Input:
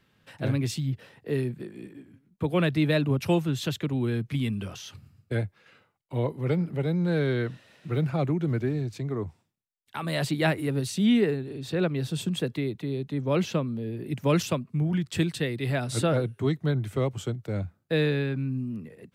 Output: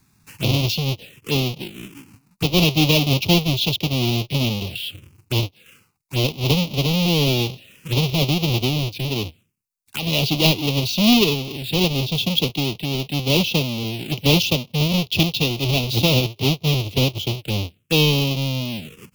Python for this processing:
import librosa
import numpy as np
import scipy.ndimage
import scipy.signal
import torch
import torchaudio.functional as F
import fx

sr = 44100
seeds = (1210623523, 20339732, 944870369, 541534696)

y = fx.halfwave_hold(x, sr)
y = fx.high_shelf_res(y, sr, hz=2200.0, db=6.5, q=3.0)
y = fx.env_phaser(y, sr, low_hz=520.0, high_hz=1600.0, full_db=-23.0)
y = F.gain(torch.from_numpy(y), 2.5).numpy()